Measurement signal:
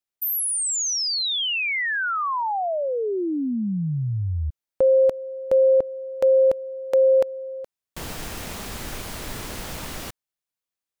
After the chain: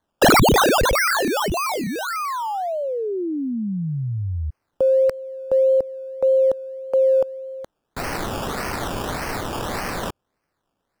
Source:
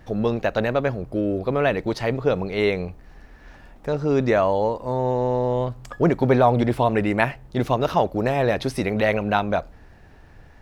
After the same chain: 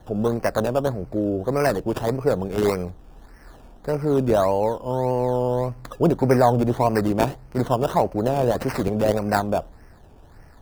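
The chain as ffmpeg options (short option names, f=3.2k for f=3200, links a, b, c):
-filter_complex "[0:a]aemphasis=mode=production:type=50kf,acrossover=split=340|1300[a][b][c];[c]acrusher=samples=17:mix=1:aa=0.000001:lfo=1:lforange=10.2:lforate=1.7[d];[a][b][d]amix=inputs=3:normalize=0"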